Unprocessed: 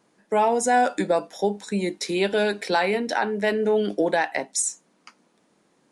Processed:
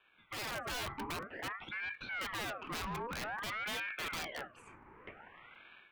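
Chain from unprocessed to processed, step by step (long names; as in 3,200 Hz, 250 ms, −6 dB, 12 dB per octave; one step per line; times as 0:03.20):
elliptic band-pass filter 230–1,700 Hz, stop band 50 dB
wrap-around overflow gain 17.5 dB
dynamic equaliser 1,000 Hz, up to −3 dB, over −38 dBFS, Q 0.74
automatic gain control gain up to 13.5 dB
soft clipping −18.5 dBFS, distortion −8 dB
downward compressor 6 to 1, threshold −33 dBFS, peak gain reduction 12 dB
brickwall limiter −33.5 dBFS, peak gain reduction 9.5 dB
regular buffer underruns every 0.72 s, samples 256, repeat, from 0:00.50
ring modulator whose carrier an LFO sweeps 1,300 Hz, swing 55%, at 0.52 Hz
level −1 dB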